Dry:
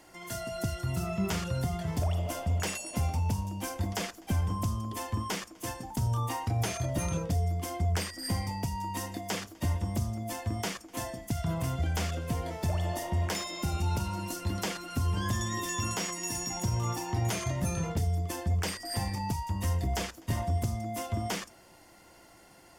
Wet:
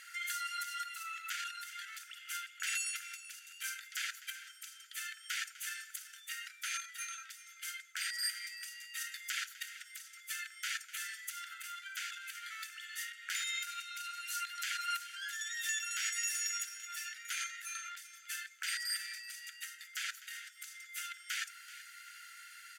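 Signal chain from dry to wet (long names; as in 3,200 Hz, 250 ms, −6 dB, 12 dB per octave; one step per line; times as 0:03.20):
high-shelf EQ 4,000 Hz −6 dB
notch filter 5,300 Hz, Q 8.7
in parallel at +2 dB: downward compressor, threshold −39 dBFS, peak gain reduction 13.5 dB
on the sum: brickwall limiter −26.5 dBFS, peak gain reduction 8.5 dB
linear-phase brick-wall high-pass 1,300 Hz
on a send: repeating echo 382 ms, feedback 31%, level −15.5 dB
on the sum: level +3 dB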